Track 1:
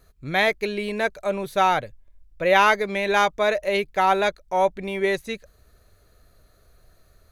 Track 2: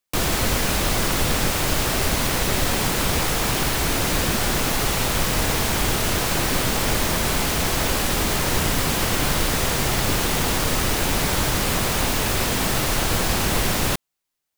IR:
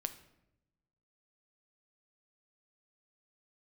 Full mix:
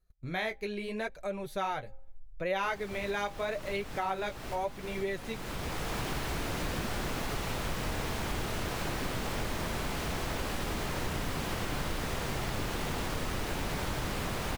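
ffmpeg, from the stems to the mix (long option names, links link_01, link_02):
-filter_complex "[0:a]flanger=delay=5.4:depth=9.9:regen=-27:speed=0.79:shape=sinusoidal,lowshelf=frequency=77:gain=11,agate=range=-18dB:threshold=-44dB:ratio=16:detection=peak,volume=-3dB,asplit=3[link_01][link_02][link_03];[link_02]volume=-23dB[link_04];[1:a]highshelf=frequency=4500:gain=-10,adelay=2500,volume=-5dB,asplit=2[link_05][link_06];[link_06]volume=-18.5dB[link_07];[link_03]apad=whole_len=752927[link_08];[link_05][link_08]sidechaincompress=threshold=-41dB:ratio=12:attack=16:release=615[link_09];[2:a]atrim=start_sample=2205[link_10];[link_04][link_07]amix=inputs=2:normalize=0[link_11];[link_11][link_10]afir=irnorm=-1:irlink=0[link_12];[link_01][link_09][link_12]amix=inputs=3:normalize=0,bandreject=frequency=267.9:width_type=h:width=4,bandreject=frequency=535.8:width_type=h:width=4,bandreject=frequency=803.7:width_type=h:width=4,acompressor=threshold=-36dB:ratio=2"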